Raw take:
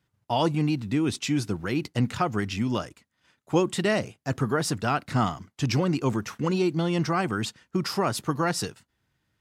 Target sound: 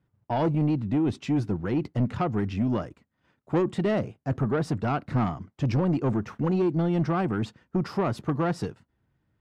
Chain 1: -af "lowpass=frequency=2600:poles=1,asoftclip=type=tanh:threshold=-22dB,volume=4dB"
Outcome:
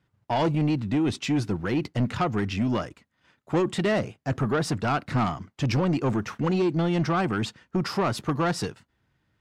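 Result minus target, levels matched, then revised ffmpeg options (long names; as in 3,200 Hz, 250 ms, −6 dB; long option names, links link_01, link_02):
2,000 Hz band +5.5 dB
-af "lowpass=frequency=670:poles=1,asoftclip=type=tanh:threshold=-22dB,volume=4dB"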